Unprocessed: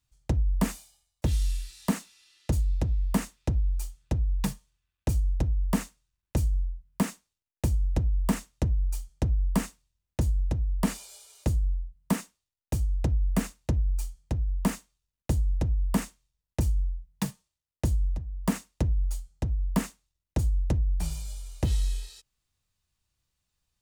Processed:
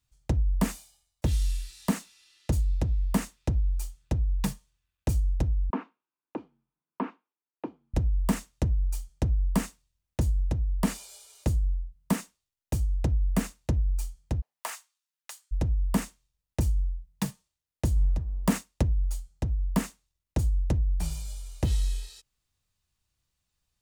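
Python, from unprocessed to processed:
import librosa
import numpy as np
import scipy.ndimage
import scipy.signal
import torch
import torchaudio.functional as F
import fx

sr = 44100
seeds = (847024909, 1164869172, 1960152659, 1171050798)

y = fx.cabinet(x, sr, low_hz=280.0, low_slope=24, high_hz=2200.0, hz=(280.0, 590.0, 980.0, 1900.0), db=(5, -7, 4, -10), at=(5.7, 7.94))
y = fx.highpass(y, sr, hz=fx.line((14.4, 590.0), (15.51, 1300.0)), slope=24, at=(14.4, 15.51), fade=0.02)
y = fx.leveller(y, sr, passes=1, at=(17.96, 18.83))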